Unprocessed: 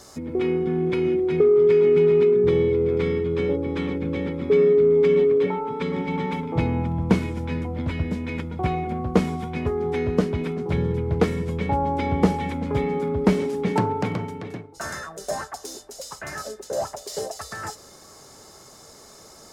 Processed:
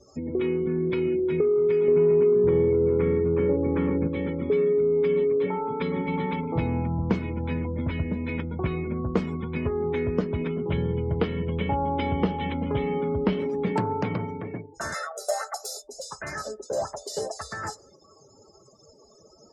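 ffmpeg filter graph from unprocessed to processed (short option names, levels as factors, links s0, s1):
-filter_complex "[0:a]asettb=1/sr,asplit=3[s0][s1][s2];[s0]atrim=end=1.884[s3];[s1]atrim=start=1.88:end=4.08,asetpts=PTS-STARTPTS,afade=t=in:d=0.004:c=qsin,afade=t=out:st=2.196:d=0.004:c=qsin,acontrast=67,lowpass=1600[s4];[s2]atrim=start=4.076[s5];[s3][s4]acrossfade=d=0.004:c1=hsin:c2=qsin[s6];[s6][s5]acrossfade=d=0.004:c1=qsin:c2=hsin,asettb=1/sr,asplit=3[s7][s8][s9];[s7]atrim=end=10.504[s10];[s8]atrim=start=10.5:end=13.4,asetpts=PTS-STARTPTS,afade=t=in:d=0.004:c=qsin,afade=t=out:st=2.896:d=0.004:c=qsin,lowpass=5200,equalizer=f=3000:w=5.8:g=9[s11];[s9]atrim=start=13.396[s12];[s10][s11]acrossfade=d=0.004:c1=hsin:c2=qsin[s13];[s13][s12]acrossfade=d=0.004:c1=qsin:c2=hsin,asettb=1/sr,asplit=3[s14][s15][s16];[s14]atrim=end=14.944[s17];[s15]atrim=start=14.94:end=15.82,asetpts=PTS-STARTPTS,afade=t=in:d=0.004:c=qsin,afade=t=out:st=0.876:d=0.004:c=qsin,highpass=f=400:w=0.5412,highpass=f=400:w=1.3066,highshelf=f=6700:g=3,aecho=1:1:1.5:0.84,atrim=end_sample=38808[s18];[s16]atrim=start=15.816[s19];[s17][s18]acrossfade=d=0.004:c1=hsin:c2=qsin[s20];[s20][s19]acrossfade=d=0.004:c1=qsin:c2=hsin,bandreject=f=740:w=20,afftdn=nr=36:nf=-43,acompressor=threshold=0.0631:ratio=2"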